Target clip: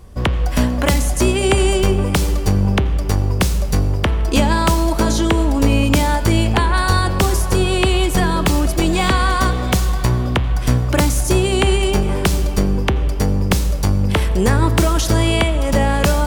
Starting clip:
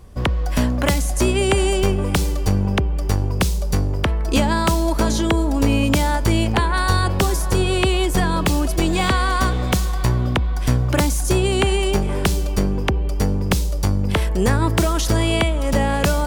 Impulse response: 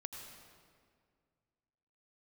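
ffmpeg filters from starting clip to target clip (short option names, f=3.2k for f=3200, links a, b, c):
-filter_complex "[0:a]bandreject=f=132.8:t=h:w=4,bandreject=f=265.6:t=h:w=4,bandreject=f=398.4:t=h:w=4,bandreject=f=531.2:t=h:w=4,bandreject=f=664:t=h:w=4,bandreject=f=796.8:t=h:w=4,bandreject=f=929.6:t=h:w=4,bandreject=f=1.0624k:t=h:w=4,bandreject=f=1.1952k:t=h:w=4,bandreject=f=1.328k:t=h:w=4,bandreject=f=1.4608k:t=h:w=4,bandreject=f=1.5936k:t=h:w=4,bandreject=f=1.7264k:t=h:w=4,bandreject=f=1.8592k:t=h:w=4,bandreject=f=1.992k:t=h:w=4,bandreject=f=2.1248k:t=h:w=4,bandreject=f=2.2576k:t=h:w=4,bandreject=f=2.3904k:t=h:w=4,bandreject=f=2.5232k:t=h:w=4,bandreject=f=2.656k:t=h:w=4,bandreject=f=2.7888k:t=h:w=4,bandreject=f=2.9216k:t=h:w=4,bandreject=f=3.0544k:t=h:w=4,bandreject=f=3.1872k:t=h:w=4,bandreject=f=3.32k:t=h:w=4,bandreject=f=3.4528k:t=h:w=4,bandreject=f=3.5856k:t=h:w=4,bandreject=f=3.7184k:t=h:w=4,bandreject=f=3.8512k:t=h:w=4,bandreject=f=3.984k:t=h:w=4,bandreject=f=4.1168k:t=h:w=4,bandreject=f=4.2496k:t=h:w=4,bandreject=f=4.3824k:t=h:w=4,bandreject=f=4.5152k:t=h:w=4,asplit=2[a][b];[1:a]atrim=start_sample=2205[c];[b][c]afir=irnorm=-1:irlink=0,volume=-5dB[d];[a][d]amix=inputs=2:normalize=0"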